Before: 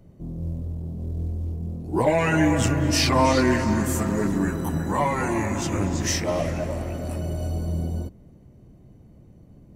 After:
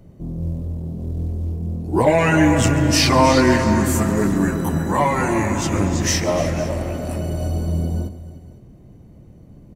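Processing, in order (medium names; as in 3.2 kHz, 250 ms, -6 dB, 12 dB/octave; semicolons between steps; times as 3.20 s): multi-tap echo 140/301/504 ms -17.5/-16.5/-19.5 dB; trim +5 dB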